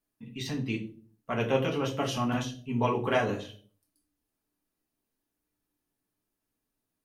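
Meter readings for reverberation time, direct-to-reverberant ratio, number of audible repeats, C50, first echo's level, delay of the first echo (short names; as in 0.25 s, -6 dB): 0.45 s, -2.0 dB, none, 11.5 dB, none, none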